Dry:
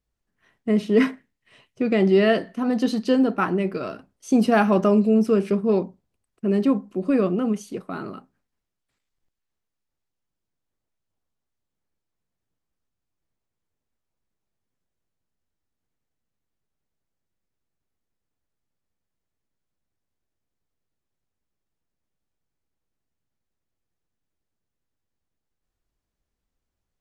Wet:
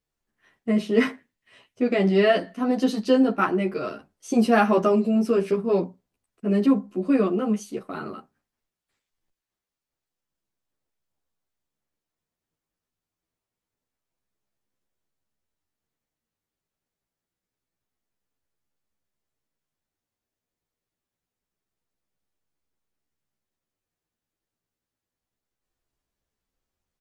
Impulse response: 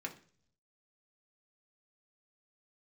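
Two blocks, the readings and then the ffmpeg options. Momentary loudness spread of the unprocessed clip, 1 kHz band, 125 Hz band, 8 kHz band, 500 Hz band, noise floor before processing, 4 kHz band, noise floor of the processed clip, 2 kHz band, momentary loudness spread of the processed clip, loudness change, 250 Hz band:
15 LU, +1.0 dB, −2.5 dB, can't be measured, −1.0 dB, −83 dBFS, +0.5 dB, below −85 dBFS, 0.0 dB, 15 LU, −1.0 dB, −1.5 dB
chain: -filter_complex "[0:a]lowshelf=frequency=180:gain=-6,asplit=2[link_01][link_02];[link_02]adelay=11,afreqshift=0.26[link_03];[link_01][link_03]amix=inputs=2:normalize=1,volume=3.5dB"

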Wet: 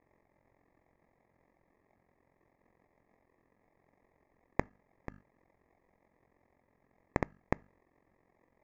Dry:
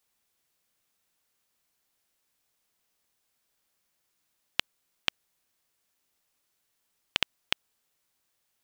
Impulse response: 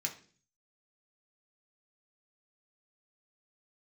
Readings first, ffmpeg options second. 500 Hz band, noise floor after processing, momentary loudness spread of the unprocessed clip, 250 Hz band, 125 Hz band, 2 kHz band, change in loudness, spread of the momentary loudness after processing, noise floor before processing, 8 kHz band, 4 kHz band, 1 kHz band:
+8.0 dB, −75 dBFS, 3 LU, +11.0 dB, +11.5 dB, −9.0 dB, −6.0 dB, 14 LU, −77 dBFS, −19.5 dB, −34.5 dB, +1.5 dB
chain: -filter_complex "[0:a]bandreject=frequency=50:width_type=h:width=6,bandreject=frequency=100:width_type=h:width=6,bandreject=frequency=150:width_type=h:width=6,bandreject=frequency=200:width_type=h:width=6,bandreject=frequency=250:width_type=h:width=6,acrusher=samples=30:mix=1:aa=0.000001,equalizer=frequency=1400:width_type=o:width=0.77:gain=-2.5,alimiter=limit=-19dB:level=0:latency=1,tremolo=f=44:d=0.788,highshelf=frequency=2500:width_type=q:width=3:gain=-11,aresample=16000,aresample=44100,asplit=2[link_01][link_02];[1:a]atrim=start_sample=2205,atrim=end_sample=4410[link_03];[link_02][link_03]afir=irnorm=-1:irlink=0,volume=-22.5dB[link_04];[link_01][link_04]amix=inputs=2:normalize=0,volume=8dB"

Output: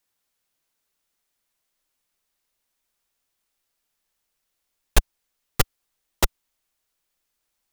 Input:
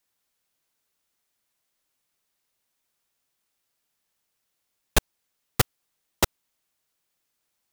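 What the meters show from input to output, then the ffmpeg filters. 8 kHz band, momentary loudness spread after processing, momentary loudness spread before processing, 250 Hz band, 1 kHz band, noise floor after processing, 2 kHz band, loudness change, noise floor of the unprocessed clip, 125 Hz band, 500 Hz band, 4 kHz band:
0.0 dB, 2 LU, 1 LU, −1.5 dB, 0.0 dB, −78 dBFS, 0.0 dB, +0.5 dB, −78 dBFS, +0.5 dB, −0.5 dB, 0.0 dB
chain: -af "asubboost=boost=4:cutoff=55"

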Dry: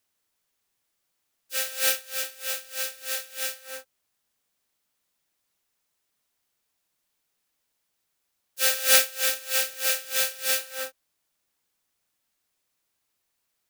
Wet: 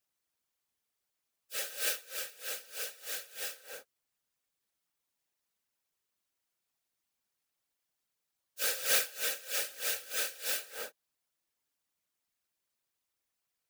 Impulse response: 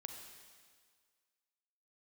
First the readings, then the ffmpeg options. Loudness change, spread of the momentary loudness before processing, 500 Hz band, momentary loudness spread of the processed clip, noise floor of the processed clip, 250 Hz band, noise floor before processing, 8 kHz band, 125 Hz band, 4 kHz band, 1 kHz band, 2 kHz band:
−9.0 dB, 16 LU, −9.5 dB, 14 LU, below −85 dBFS, −7.0 dB, −78 dBFS, −9.0 dB, can't be measured, −9.5 dB, −9.0 dB, −9.0 dB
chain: -filter_complex "[0:a]asplit=2[link_01][link_02];[link_02]asoftclip=type=tanh:threshold=-19.5dB,volume=-5dB[link_03];[link_01][link_03]amix=inputs=2:normalize=0,afftfilt=real='hypot(re,im)*cos(2*PI*random(0))':imag='hypot(re,im)*sin(2*PI*random(1))':win_size=512:overlap=0.75,volume=-6dB"

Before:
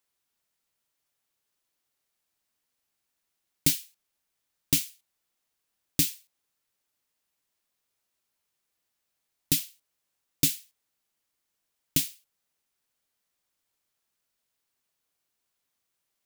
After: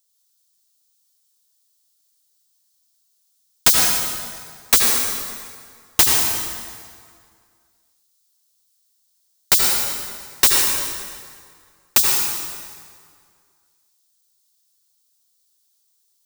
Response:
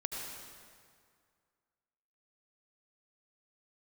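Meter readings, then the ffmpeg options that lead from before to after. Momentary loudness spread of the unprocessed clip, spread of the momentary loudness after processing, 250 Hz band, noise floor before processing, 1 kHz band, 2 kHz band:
10 LU, 18 LU, +0.5 dB, −81 dBFS, can't be measured, +17.5 dB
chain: -filter_complex "[0:a]aexciter=amount=5.5:drive=7.8:freq=3500,aeval=exprs='(mod(0.631*val(0)+1,2)-1)/0.631':channel_layout=same,equalizer=frequency=13000:width=0.85:gain=-5.5[link_01];[1:a]atrim=start_sample=2205[link_02];[link_01][link_02]afir=irnorm=-1:irlink=0,volume=-4dB"

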